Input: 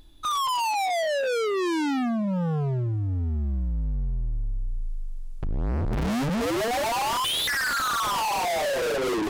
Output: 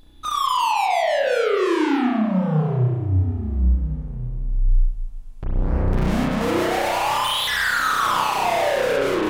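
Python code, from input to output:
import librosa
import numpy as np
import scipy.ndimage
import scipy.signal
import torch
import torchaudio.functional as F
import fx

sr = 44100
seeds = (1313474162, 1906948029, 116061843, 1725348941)

y = fx.peak_eq(x, sr, hz=310.0, db=-13.5, octaves=0.84, at=(6.59, 7.73))
y = fx.rev_spring(y, sr, rt60_s=1.2, pass_ms=(32,), chirp_ms=55, drr_db=-4.0)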